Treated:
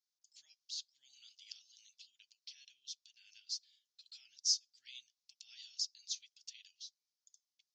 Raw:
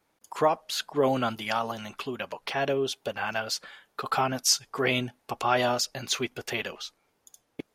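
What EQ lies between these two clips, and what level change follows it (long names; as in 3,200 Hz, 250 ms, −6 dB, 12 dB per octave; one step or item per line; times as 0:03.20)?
inverse Chebyshev high-pass filter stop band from 1,200 Hz, stop band 80 dB
inverse Chebyshev low-pass filter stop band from 9,400 Hz, stop band 40 dB
high-frequency loss of the air 100 metres
+10.5 dB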